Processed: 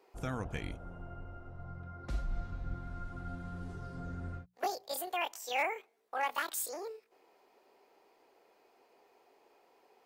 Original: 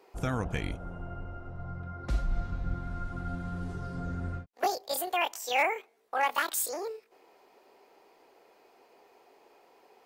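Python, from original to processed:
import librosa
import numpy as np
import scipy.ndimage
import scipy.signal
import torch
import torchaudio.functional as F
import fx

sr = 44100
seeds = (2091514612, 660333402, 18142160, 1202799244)

y = fx.hum_notches(x, sr, base_hz=60, count=3)
y = y * librosa.db_to_amplitude(-6.0)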